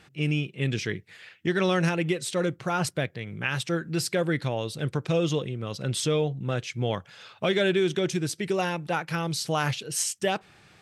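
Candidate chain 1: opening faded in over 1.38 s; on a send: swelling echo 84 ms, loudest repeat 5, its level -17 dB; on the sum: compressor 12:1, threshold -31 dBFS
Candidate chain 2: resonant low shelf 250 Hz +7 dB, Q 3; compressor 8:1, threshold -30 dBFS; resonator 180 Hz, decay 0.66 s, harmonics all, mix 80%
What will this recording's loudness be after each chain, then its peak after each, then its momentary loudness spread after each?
-35.5, -44.0 LUFS; -19.5, -29.5 dBFS; 4, 8 LU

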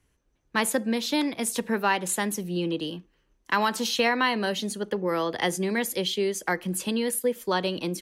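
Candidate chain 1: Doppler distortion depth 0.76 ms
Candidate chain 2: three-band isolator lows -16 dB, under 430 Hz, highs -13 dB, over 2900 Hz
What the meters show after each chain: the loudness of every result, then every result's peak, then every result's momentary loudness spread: -27.5, -30.5 LUFS; -12.5, -12.0 dBFS; 5, 10 LU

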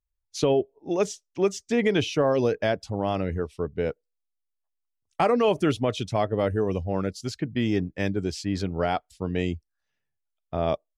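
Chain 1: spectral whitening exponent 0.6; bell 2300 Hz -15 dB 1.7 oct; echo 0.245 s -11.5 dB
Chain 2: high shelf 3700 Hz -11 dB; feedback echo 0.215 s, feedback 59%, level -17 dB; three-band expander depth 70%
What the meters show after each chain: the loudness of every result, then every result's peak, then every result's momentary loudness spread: -28.0, -26.0 LUFS; -11.5, -7.5 dBFS; 8, 11 LU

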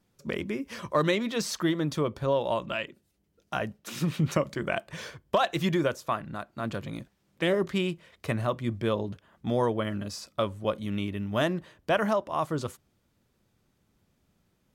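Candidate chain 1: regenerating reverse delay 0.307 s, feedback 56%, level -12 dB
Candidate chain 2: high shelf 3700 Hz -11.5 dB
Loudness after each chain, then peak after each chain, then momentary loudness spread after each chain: -29.5, -30.5 LUFS; -11.0, -13.0 dBFS; 11, 10 LU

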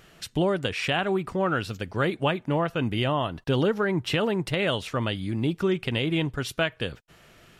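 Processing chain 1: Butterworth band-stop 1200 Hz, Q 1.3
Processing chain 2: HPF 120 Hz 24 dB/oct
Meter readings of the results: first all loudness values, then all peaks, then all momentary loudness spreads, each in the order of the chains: -27.5, -27.0 LUFS; -9.5, -9.0 dBFS; 4, 5 LU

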